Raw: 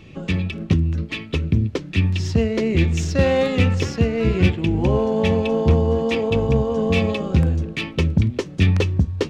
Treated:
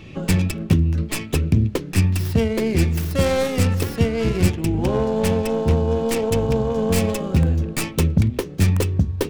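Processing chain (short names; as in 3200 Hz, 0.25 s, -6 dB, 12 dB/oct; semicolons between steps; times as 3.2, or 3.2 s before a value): tracing distortion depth 0.42 ms; vocal rider within 4 dB 0.5 s; de-hum 69.14 Hz, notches 7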